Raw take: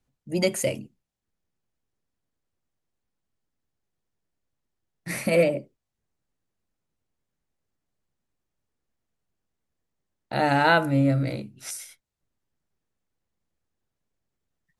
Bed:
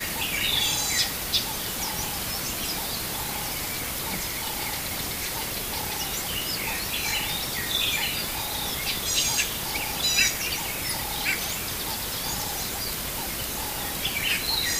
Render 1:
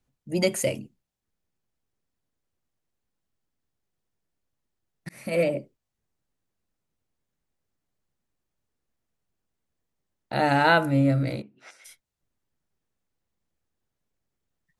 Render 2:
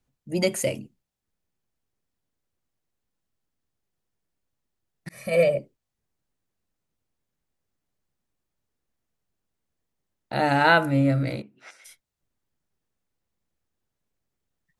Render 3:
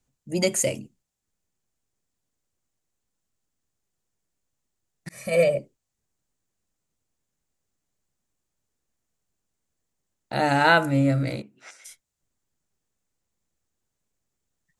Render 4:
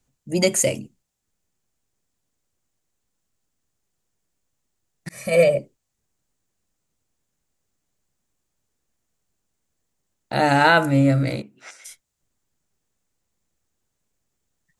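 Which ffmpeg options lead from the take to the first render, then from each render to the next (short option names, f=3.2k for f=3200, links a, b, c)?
-filter_complex "[0:a]asplit=3[a][b][c];[a]afade=t=out:st=11.41:d=0.02[d];[b]highpass=340,lowpass=2.1k,afade=t=in:st=11.41:d=0.02,afade=t=out:st=11.84:d=0.02[e];[c]afade=t=in:st=11.84:d=0.02[f];[d][e][f]amix=inputs=3:normalize=0,asplit=2[g][h];[g]atrim=end=5.09,asetpts=PTS-STARTPTS,afade=t=out:st=5.086:d=0.004:c=hsin[i];[h]atrim=start=5.09,asetpts=PTS-STARTPTS,afade=t=in:d=0.47[j];[i][j]concat=n=2:v=0:a=1"
-filter_complex "[0:a]asettb=1/sr,asplit=3[a][b][c];[a]atrim=end=5.114[d];[b]atrim=start=5.11:end=5.59,asetpts=PTS-STARTPTS,afade=t=in:d=0.004:c=qsin,afade=t=out:st=0.476:d=0.004:c=qsin,aecho=1:1:1.7:0.8,atrim=end_sample=21168[e];[c]atrim=start=5.586[f];[d][e]acrossfade=d=0.004:c1=hsin:c2=qsin[g];[g][f]acrossfade=d=0.004:c1=qsin:c2=hsin,asettb=1/sr,asplit=3[h][i][j];[h]atrim=end=10.614[k];[i]atrim=start=10.61:end=11.81,asetpts=PTS-STARTPTS,afade=t=in:d=0.004:c=qsin,afade=t=out:st=1.196:d=0.004:c=qsin,equalizer=f=1.8k:t=o:w=1.9:g=2.5[l];[j]atrim=start=11.806[m];[k][l]acrossfade=d=0.004:c1=hsin:c2=qsin[n];[n][m]acrossfade=d=0.004:c1=qsin:c2=hsin"
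-af "equalizer=f=7.2k:t=o:w=0.66:g=9"
-af "volume=4dB,alimiter=limit=-3dB:level=0:latency=1"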